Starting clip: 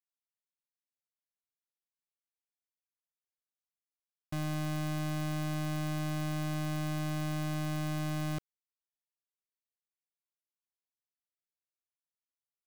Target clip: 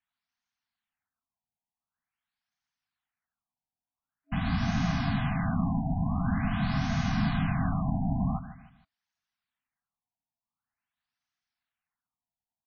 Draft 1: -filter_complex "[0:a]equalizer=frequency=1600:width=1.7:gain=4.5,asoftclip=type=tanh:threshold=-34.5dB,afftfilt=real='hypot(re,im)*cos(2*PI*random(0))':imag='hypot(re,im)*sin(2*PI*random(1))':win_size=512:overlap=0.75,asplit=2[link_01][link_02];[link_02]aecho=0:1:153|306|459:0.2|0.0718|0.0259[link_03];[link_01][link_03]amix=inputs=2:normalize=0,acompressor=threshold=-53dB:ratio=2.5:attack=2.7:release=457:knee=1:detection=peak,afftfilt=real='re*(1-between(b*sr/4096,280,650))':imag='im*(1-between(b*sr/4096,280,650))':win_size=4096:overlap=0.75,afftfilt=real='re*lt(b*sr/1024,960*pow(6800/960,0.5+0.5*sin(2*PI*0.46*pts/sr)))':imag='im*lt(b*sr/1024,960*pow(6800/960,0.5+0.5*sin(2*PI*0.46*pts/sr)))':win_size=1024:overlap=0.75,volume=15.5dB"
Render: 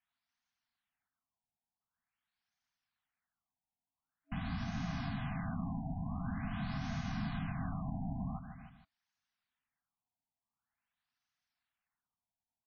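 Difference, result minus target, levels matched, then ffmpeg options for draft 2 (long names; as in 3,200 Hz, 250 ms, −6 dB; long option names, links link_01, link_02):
downward compressor: peak gain reduction +12 dB
-filter_complex "[0:a]equalizer=frequency=1600:width=1.7:gain=4.5,asoftclip=type=tanh:threshold=-34.5dB,afftfilt=real='hypot(re,im)*cos(2*PI*random(0))':imag='hypot(re,im)*sin(2*PI*random(1))':win_size=512:overlap=0.75,asplit=2[link_01][link_02];[link_02]aecho=0:1:153|306|459:0.2|0.0718|0.0259[link_03];[link_01][link_03]amix=inputs=2:normalize=0,afftfilt=real='re*(1-between(b*sr/4096,280,650))':imag='im*(1-between(b*sr/4096,280,650))':win_size=4096:overlap=0.75,afftfilt=real='re*lt(b*sr/1024,960*pow(6800/960,0.5+0.5*sin(2*PI*0.46*pts/sr)))':imag='im*lt(b*sr/1024,960*pow(6800/960,0.5+0.5*sin(2*PI*0.46*pts/sr)))':win_size=1024:overlap=0.75,volume=15.5dB"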